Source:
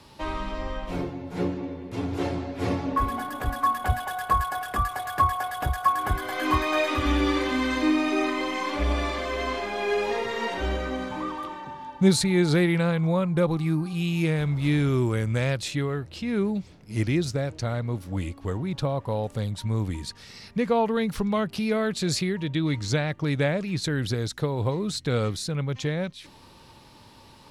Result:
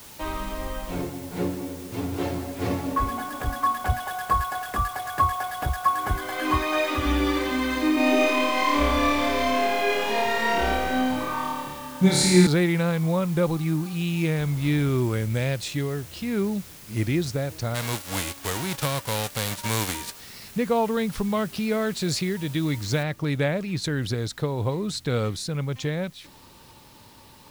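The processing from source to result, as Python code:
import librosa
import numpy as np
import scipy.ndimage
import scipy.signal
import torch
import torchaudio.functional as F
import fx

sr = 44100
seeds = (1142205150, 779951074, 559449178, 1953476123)

y = fx.room_flutter(x, sr, wall_m=4.7, rt60_s=1.3, at=(7.94, 12.47))
y = fx.peak_eq(y, sr, hz=1200.0, db=-5.5, octaves=0.77, at=(15.18, 16.05))
y = fx.envelope_flatten(y, sr, power=0.3, at=(17.74, 20.19), fade=0.02)
y = fx.noise_floor_step(y, sr, seeds[0], at_s=23.03, before_db=-46, after_db=-57, tilt_db=0.0)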